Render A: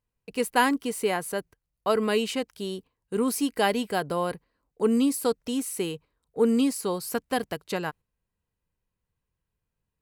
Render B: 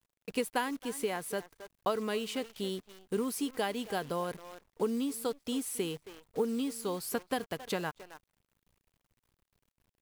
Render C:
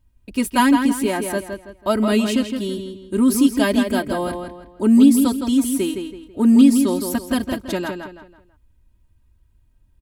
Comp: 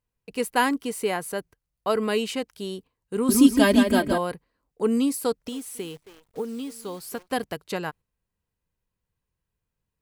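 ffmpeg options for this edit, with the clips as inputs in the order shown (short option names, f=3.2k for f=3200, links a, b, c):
-filter_complex "[0:a]asplit=3[a][b][c];[a]atrim=end=3.292[d];[2:a]atrim=start=3.288:end=4.182[e];[b]atrim=start=4.178:end=5.492[f];[1:a]atrim=start=5.488:end=7.282[g];[c]atrim=start=7.278[h];[d][e]acrossfade=d=0.004:c1=hsin:c2=hsin[i];[i][f]acrossfade=d=0.004:c1=hsin:c2=hsin[j];[j][g]acrossfade=d=0.004:c1=hsin:c2=hsin[k];[k][h]acrossfade=d=0.004:c1=hsin:c2=hsin"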